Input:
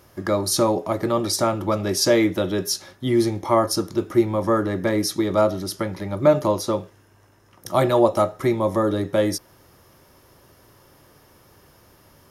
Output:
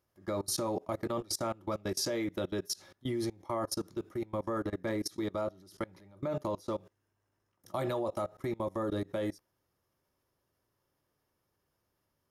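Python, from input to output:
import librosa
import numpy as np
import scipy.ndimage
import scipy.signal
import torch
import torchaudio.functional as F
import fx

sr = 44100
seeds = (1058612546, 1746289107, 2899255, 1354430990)

y = fx.level_steps(x, sr, step_db=24)
y = y * 10.0 ** (-8.5 / 20.0)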